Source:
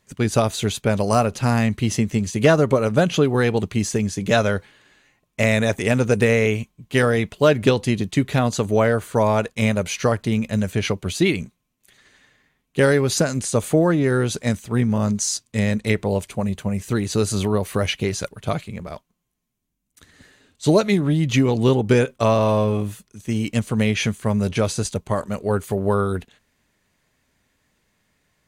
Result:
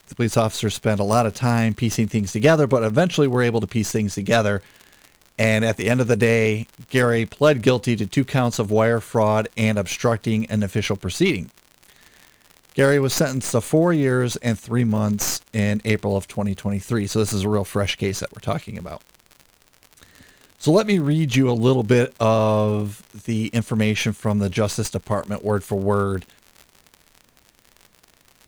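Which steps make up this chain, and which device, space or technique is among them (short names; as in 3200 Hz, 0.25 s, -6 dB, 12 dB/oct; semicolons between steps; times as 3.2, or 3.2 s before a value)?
record under a worn stylus (tracing distortion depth 0.048 ms; crackle 70/s -31 dBFS; pink noise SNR 41 dB)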